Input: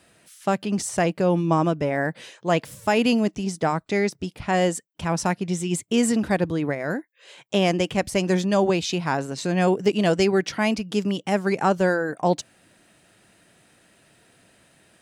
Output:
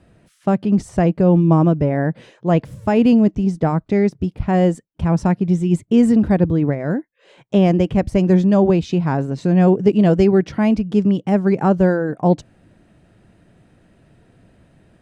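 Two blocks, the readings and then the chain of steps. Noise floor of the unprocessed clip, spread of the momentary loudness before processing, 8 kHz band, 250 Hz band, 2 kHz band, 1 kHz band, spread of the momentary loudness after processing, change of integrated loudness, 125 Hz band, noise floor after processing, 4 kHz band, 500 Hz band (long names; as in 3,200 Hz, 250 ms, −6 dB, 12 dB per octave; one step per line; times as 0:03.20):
−59 dBFS, 6 LU, below −10 dB, +9.0 dB, −3.5 dB, +1.0 dB, 7 LU, +6.5 dB, +10.0 dB, −59 dBFS, −7.0 dB, +4.5 dB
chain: spectral tilt −4 dB per octave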